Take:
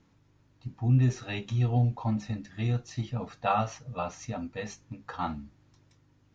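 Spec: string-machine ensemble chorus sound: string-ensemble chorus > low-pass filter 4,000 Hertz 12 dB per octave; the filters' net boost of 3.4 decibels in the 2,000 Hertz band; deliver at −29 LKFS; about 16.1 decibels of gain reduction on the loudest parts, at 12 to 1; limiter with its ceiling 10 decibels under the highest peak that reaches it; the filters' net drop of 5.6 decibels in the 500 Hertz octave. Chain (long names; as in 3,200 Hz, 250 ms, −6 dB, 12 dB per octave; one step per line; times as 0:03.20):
parametric band 500 Hz −8 dB
parametric band 2,000 Hz +5.5 dB
downward compressor 12 to 1, threshold −36 dBFS
brickwall limiter −34 dBFS
string-ensemble chorus
low-pass filter 4,000 Hz 12 dB per octave
level +19.5 dB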